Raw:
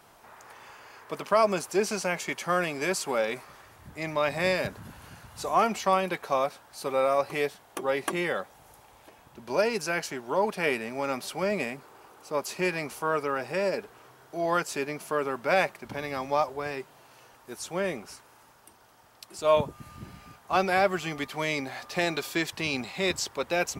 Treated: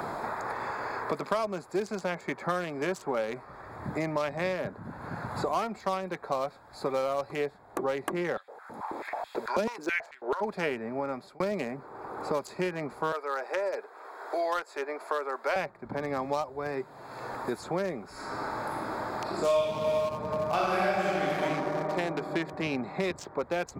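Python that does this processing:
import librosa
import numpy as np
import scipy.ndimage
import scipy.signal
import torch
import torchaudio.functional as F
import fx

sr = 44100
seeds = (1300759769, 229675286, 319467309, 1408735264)

y = fx.filter_held_highpass(x, sr, hz=9.2, low_hz=220.0, high_hz=3000.0, at=(8.36, 10.4), fade=0.02)
y = fx.bessel_highpass(y, sr, hz=600.0, order=6, at=(13.12, 15.56))
y = fx.reverb_throw(y, sr, start_s=18.11, length_s=3.31, rt60_s=2.9, drr_db=-11.0)
y = fx.edit(y, sr, fx.fade_out_span(start_s=10.9, length_s=0.5), tone=tone)
y = fx.wiener(y, sr, points=15)
y = fx.band_squash(y, sr, depth_pct=100)
y = F.gain(torch.from_numpy(y), -3.5).numpy()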